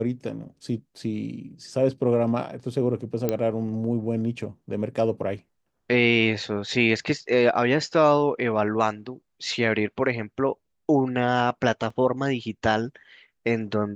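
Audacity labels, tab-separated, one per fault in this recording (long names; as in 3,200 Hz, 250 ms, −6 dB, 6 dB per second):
3.290000	3.290000	click −11 dBFS
11.900000	11.900000	drop-out 4.2 ms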